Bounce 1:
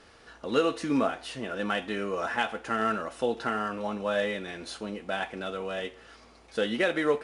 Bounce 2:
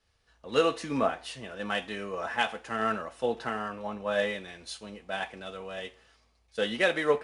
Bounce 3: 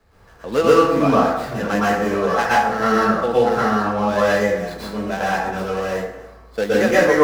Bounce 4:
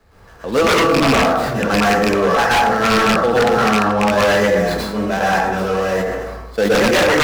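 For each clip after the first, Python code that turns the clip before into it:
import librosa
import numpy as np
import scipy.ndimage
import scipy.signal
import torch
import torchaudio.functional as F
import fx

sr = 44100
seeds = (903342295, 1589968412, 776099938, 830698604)

y1 = fx.peak_eq(x, sr, hz=300.0, db=-5.5, octaves=0.93)
y1 = fx.notch(y1, sr, hz=1400.0, q=16.0)
y1 = fx.band_widen(y1, sr, depth_pct=70)
y2 = scipy.ndimage.median_filter(y1, 15, mode='constant')
y2 = fx.rev_plate(y2, sr, seeds[0], rt60_s=0.74, hf_ratio=0.55, predelay_ms=105, drr_db=-9.0)
y2 = fx.band_squash(y2, sr, depth_pct=40)
y2 = y2 * librosa.db_to_amplitude(5.0)
y3 = fx.rattle_buzz(y2, sr, strikes_db=-22.0, level_db=-9.0)
y3 = 10.0 ** (-13.0 / 20.0) * (np.abs((y3 / 10.0 ** (-13.0 / 20.0) + 3.0) % 4.0 - 2.0) - 1.0)
y3 = fx.sustainer(y3, sr, db_per_s=33.0)
y3 = y3 * librosa.db_to_amplitude(4.5)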